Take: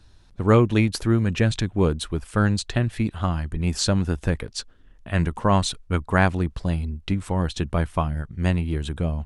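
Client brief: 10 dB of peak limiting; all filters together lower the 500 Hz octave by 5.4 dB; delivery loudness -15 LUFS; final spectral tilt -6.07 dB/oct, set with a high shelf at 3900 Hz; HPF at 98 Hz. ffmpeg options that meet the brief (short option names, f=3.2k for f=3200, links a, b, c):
-af "highpass=98,equalizer=f=500:t=o:g=-7,highshelf=f=3.9k:g=-8.5,volume=14dB,alimiter=limit=-2.5dB:level=0:latency=1"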